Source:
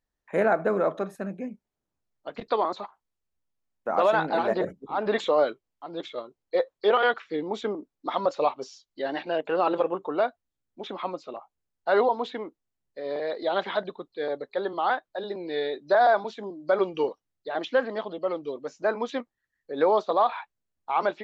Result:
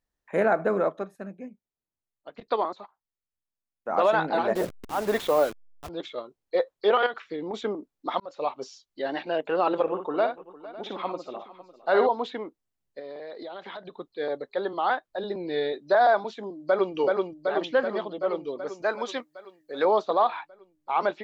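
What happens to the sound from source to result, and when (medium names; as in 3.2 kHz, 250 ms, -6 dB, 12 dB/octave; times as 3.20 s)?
0.84–3.91 s: upward expansion, over -42 dBFS
4.55–5.89 s: send-on-delta sampling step -33.5 dBFS
7.06–7.54 s: compression, threshold -28 dBFS
8.20–8.63 s: fade in
9.82–12.07 s: multi-tap echo 57/456/554 ms -7.5/-18/-19 dB
12.99–13.99 s: compression, threshold -36 dBFS
15.12–15.73 s: bass shelf 160 Hz +11 dB
16.53–16.95 s: echo throw 380 ms, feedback 70%, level -2 dB
18.82–19.85 s: tilt EQ +2.5 dB/octave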